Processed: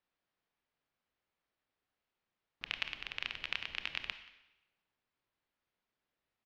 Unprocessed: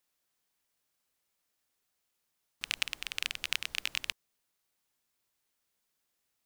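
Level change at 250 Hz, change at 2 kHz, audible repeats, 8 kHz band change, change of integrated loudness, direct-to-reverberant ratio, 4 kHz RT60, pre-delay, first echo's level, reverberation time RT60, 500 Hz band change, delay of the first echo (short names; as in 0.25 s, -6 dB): 0.0 dB, -3.5 dB, 1, -21.0 dB, -5.0 dB, 9.5 dB, 0.90 s, 23 ms, -21.5 dB, 0.95 s, -0.5 dB, 0.18 s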